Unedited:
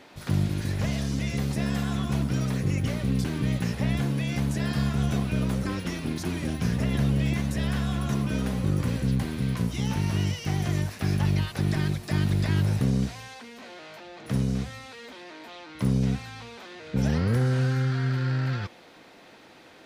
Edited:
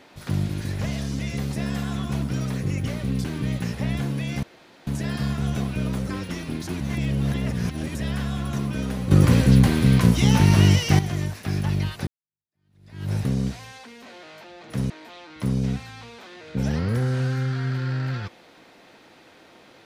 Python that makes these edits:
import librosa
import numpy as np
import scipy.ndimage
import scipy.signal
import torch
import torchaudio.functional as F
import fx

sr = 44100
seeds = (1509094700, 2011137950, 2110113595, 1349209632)

y = fx.edit(x, sr, fx.insert_room_tone(at_s=4.43, length_s=0.44),
    fx.reverse_span(start_s=6.36, length_s=1.15),
    fx.clip_gain(start_s=8.67, length_s=1.88, db=10.5),
    fx.fade_in_span(start_s=11.63, length_s=1.05, curve='exp'),
    fx.cut(start_s=14.46, length_s=0.83), tone=tone)